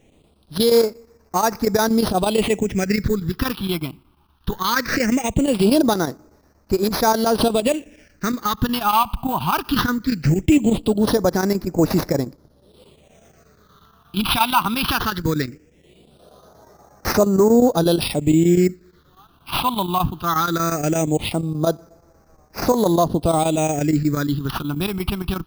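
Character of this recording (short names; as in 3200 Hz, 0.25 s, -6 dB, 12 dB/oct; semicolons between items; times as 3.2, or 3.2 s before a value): chopped level 8.4 Hz, depth 60%, duty 85%; aliases and images of a low sample rate 7400 Hz, jitter 0%; phasing stages 6, 0.19 Hz, lowest notch 490–3100 Hz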